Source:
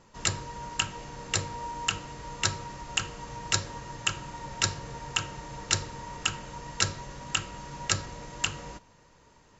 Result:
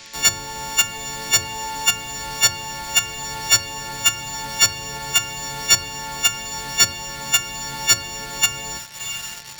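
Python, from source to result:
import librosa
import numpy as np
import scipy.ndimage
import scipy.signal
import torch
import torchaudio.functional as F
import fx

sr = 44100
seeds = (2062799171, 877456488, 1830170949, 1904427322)

p1 = fx.freq_snap(x, sr, grid_st=4)
p2 = p1 + fx.echo_diffused(p1, sr, ms=704, feedback_pct=48, wet_db=-16.0, dry=0)
p3 = fx.dmg_noise_band(p2, sr, seeds[0], low_hz=1600.0, high_hz=6400.0, level_db=-52.0)
p4 = fx.quant_companded(p3, sr, bits=2)
p5 = p3 + F.gain(torch.from_numpy(p4), -6.0).numpy()
p6 = fx.band_squash(p5, sr, depth_pct=40)
y = F.gain(torch.from_numpy(p6), -3.0).numpy()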